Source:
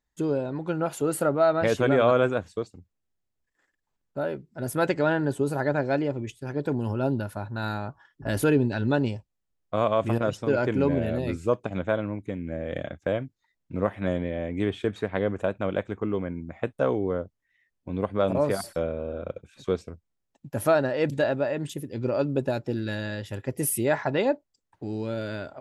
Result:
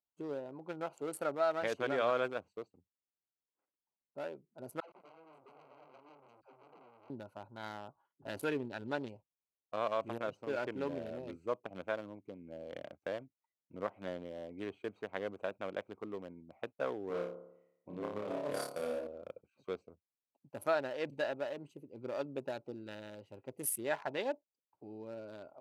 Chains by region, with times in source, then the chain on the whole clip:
0:04.80–0:07.10: downward compressor 10 to 1, threshold −31 dBFS + all-pass dispersion lows, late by 121 ms, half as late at 430 Hz + saturating transformer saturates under 3,600 Hz
0:17.07–0:19.07: compressor whose output falls as the input rises −26 dBFS, ratio −0.5 + flutter between parallel walls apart 4.9 metres, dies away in 0.79 s
whole clip: adaptive Wiener filter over 25 samples; high-pass filter 810 Hz 6 dB per octave; level −6.5 dB

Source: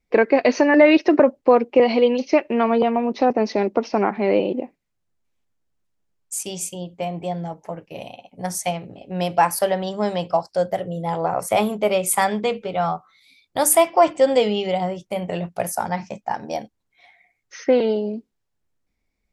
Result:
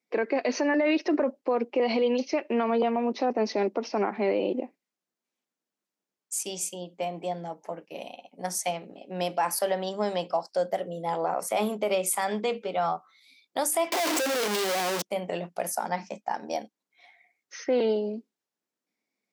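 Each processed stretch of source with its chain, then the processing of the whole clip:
0:13.92–0:15.02: sign of each sample alone + high-pass filter 300 Hz 6 dB per octave
whole clip: high-pass filter 210 Hz 24 dB per octave; parametric band 5,400 Hz +2.5 dB; brickwall limiter −13 dBFS; level −4 dB

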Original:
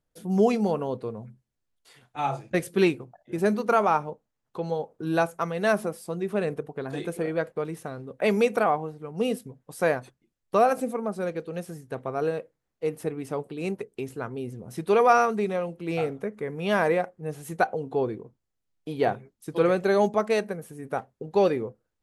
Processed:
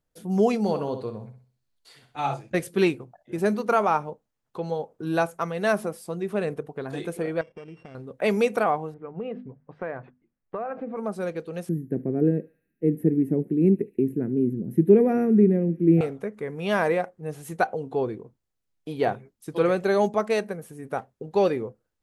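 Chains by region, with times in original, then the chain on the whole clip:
0:00.61–0:02.34: parametric band 4,300 Hz +8 dB 0.3 octaves + flutter between parallel walls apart 10.8 metres, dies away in 0.42 s
0:07.41–0:07.95: samples sorted by size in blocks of 16 samples + downward compressor 2.5 to 1, threshold −40 dBFS + head-to-tape spacing loss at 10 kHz 30 dB
0:08.94–0:10.97: low-pass filter 2,200 Hz 24 dB per octave + mains-hum notches 50/100/150/200/250 Hz + downward compressor, threshold −28 dBFS
0:11.69–0:16.01: drawn EQ curve 100 Hz 0 dB, 160 Hz +13 dB, 340 Hz +14 dB, 500 Hz −2 dB, 1,200 Hz −25 dB, 1,800 Hz −5 dB, 2,800 Hz −18 dB, 4,700 Hz −28 dB, 9,000 Hz −17 dB, 13,000 Hz +5 dB + feedback echo with a high-pass in the loop 71 ms, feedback 83%, high-pass 1,200 Hz, level −19.5 dB
whole clip: no processing

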